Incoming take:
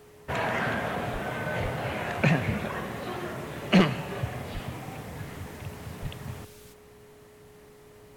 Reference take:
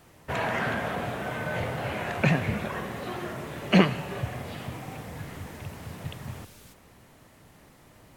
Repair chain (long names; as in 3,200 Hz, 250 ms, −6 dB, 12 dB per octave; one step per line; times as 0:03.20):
clipped peaks rebuilt −11 dBFS
notch filter 420 Hz, Q 30
high-pass at the plosives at 0:01.12/0:01.62/0:04.53/0:06.01